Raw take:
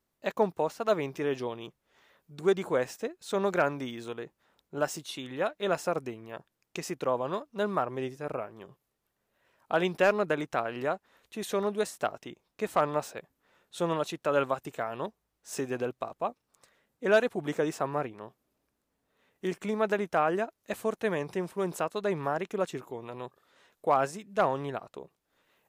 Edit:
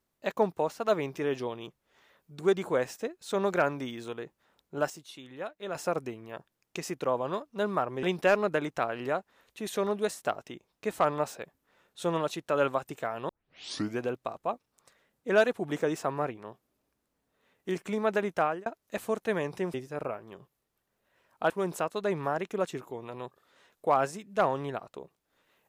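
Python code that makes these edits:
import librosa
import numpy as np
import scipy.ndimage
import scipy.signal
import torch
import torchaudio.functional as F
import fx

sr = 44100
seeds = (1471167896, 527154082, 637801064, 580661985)

y = fx.edit(x, sr, fx.clip_gain(start_s=4.9, length_s=0.85, db=-8.0),
    fx.move(start_s=8.03, length_s=1.76, to_s=21.5),
    fx.tape_start(start_s=15.05, length_s=0.71),
    fx.fade_out_span(start_s=20.17, length_s=0.25), tone=tone)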